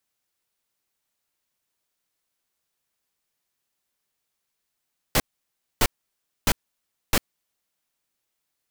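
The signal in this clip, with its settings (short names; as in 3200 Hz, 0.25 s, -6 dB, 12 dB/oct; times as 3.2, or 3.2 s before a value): noise bursts pink, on 0.05 s, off 0.61 s, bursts 4, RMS -18.5 dBFS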